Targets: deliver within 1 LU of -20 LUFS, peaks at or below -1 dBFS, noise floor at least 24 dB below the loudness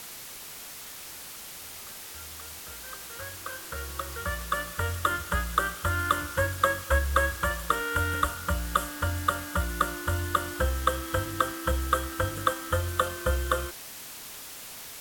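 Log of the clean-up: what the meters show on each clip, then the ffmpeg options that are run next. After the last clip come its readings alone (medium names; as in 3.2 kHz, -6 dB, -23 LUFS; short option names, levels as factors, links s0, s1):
noise floor -43 dBFS; noise floor target -54 dBFS; loudness -30.0 LUFS; peak level -8.5 dBFS; loudness target -20.0 LUFS
-> -af "afftdn=nr=11:nf=-43"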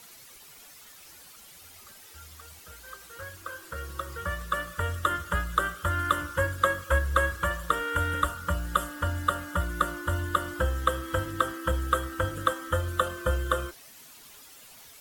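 noise floor -51 dBFS; noise floor target -53 dBFS
-> -af "afftdn=nr=6:nf=-51"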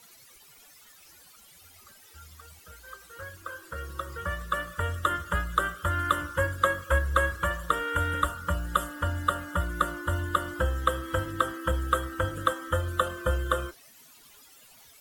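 noise floor -55 dBFS; loudness -29.0 LUFS; peak level -8.5 dBFS; loudness target -20.0 LUFS
-> -af "volume=2.82,alimiter=limit=0.891:level=0:latency=1"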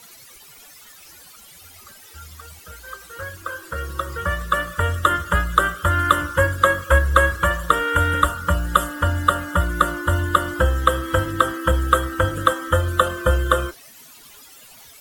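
loudness -20.0 LUFS; peak level -1.0 dBFS; noise floor -46 dBFS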